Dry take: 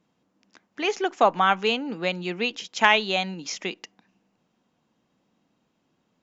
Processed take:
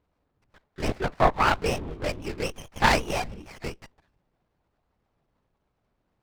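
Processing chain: bass shelf 260 Hz -7.5 dB; LPC vocoder at 8 kHz whisper; sliding maximum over 9 samples

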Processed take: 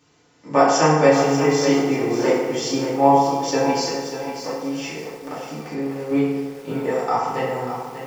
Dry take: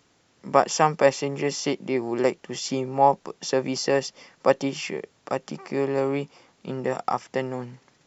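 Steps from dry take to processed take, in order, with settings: 3.87–6.11 s: compression 6:1, threshold -31 dBFS, peak gain reduction 17.5 dB; FDN reverb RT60 1.4 s, low-frequency decay 0.75×, high-frequency decay 0.55×, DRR -8.5 dB; bit-crushed delay 590 ms, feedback 35%, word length 6-bit, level -9 dB; trim -4 dB

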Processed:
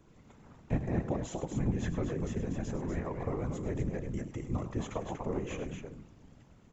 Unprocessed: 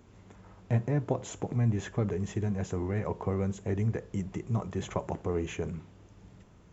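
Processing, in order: loudspeakers at several distances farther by 35 m -11 dB, 83 m -6 dB; whisper effect; trim -4 dB

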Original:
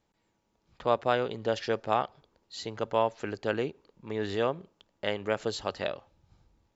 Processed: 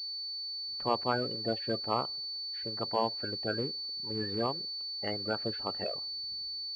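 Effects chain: coarse spectral quantiser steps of 30 dB; class-D stage that switches slowly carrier 4.5 kHz; trim -3.5 dB

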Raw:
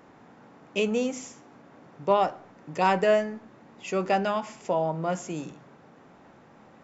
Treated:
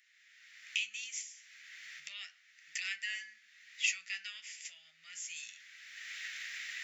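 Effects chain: recorder AGC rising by 26 dB/s; elliptic high-pass 1.9 kHz, stop band 50 dB; 1.21–2.06 s: compression 6:1, threshold -44 dBFS, peak gain reduction 9.5 dB; flange 0.32 Hz, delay 8.3 ms, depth 5.4 ms, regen -52%; trim +1.5 dB

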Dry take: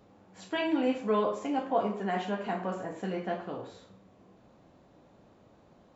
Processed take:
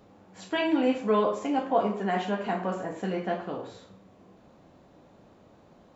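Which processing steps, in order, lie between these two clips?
hum notches 60/120 Hz; trim +3.5 dB

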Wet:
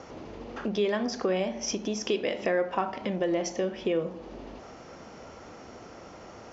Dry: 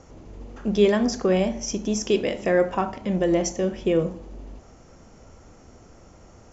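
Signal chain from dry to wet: low-pass 5.2 kHz 24 dB/octave; compression 2.5:1, threshold -36 dBFS, peak gain reduction 15.5 dB; high-pass 390 Hz 6 dB/octave; trim +8.5 dB

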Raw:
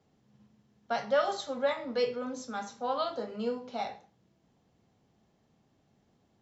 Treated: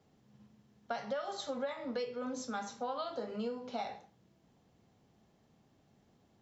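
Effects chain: compression 12:1, threshold -35 dBFS, peak gain reduction 14.5 dB; trim +1 dB

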